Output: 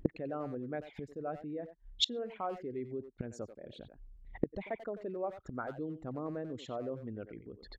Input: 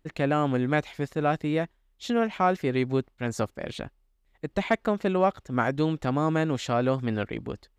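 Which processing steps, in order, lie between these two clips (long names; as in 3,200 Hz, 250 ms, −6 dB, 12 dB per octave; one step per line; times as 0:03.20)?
spectral envelope exaggerated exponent 2
far-end echo of a speakerphone 90 ms, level −10 dB
gate with flip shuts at −31 dBFS, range −31 dB
level +16.5 dB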